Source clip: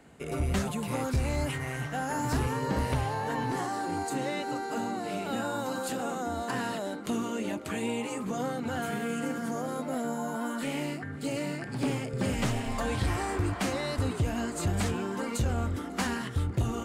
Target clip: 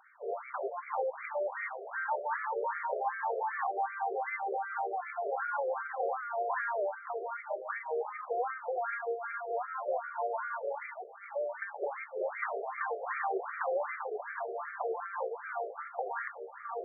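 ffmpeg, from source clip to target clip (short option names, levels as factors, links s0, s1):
-af "afftfilt=real='re*between(b*sr/1024,510*pow(1700/510,0.5+0.5*sin(2*PI*2.6*pts/sr))/1.41,510*pow(1700/510,0.5+0.5*sin(2*PI*2.6*pts/sr))*1.41)':imag='im*between(b*sr/1024,510*pow(1700/510,0.5+0.5*sin(2*PI*2.6*pts/sr))/1.41,510*pow(1700/510,0.5+0.5*sin(2*PI*2.6*pts/sr))*1.41)':win_size=1024:overlap=0.75,volume=1.68"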